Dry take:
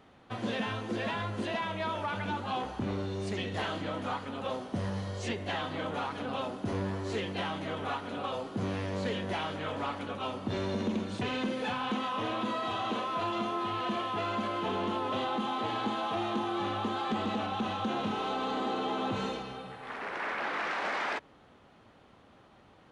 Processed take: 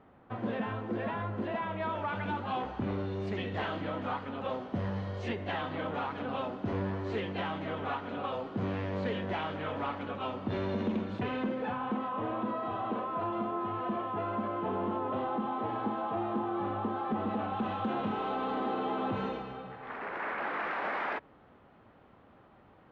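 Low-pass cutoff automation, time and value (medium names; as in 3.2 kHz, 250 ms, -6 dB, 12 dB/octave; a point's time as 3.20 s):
1.48 s 1.6 kHz
2.22 s 2.7 kHz
10.92 s 2.7 kHz
11.87 s 1.3 kHz
17.16 s 1.3 kHz
17.73 s 2.1 kHz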